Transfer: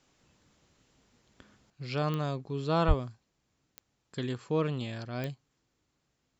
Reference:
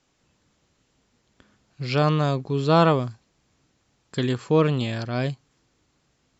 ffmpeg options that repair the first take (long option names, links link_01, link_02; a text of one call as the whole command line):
ffmpeg -i in.wav -filter_complex "[0:a]adeclick=threshold=4,asplit=3[link_01][link_02][link_03];[link_01]afade=type=out:start_time=2.87:duration=0.02[link_04];[link_02]highpass=frequency=140:width=0.5412,highpass=frequency=140:width=1.3066,afade=type=in:start_time=2.87:duration=0.02,afade=type=out:start_time=2.99:duration=0.02[link_05];[link_03]afade=type=in:start_time=2.99:duration=0.02[link_06];[link_04][link_05][link_06]amix=inputs=3:normalize=0,asetnsamples=nb_out_samples=441:pad=0,asendcmd='1.7 volume volume 10dB',volume=0dB" out.wav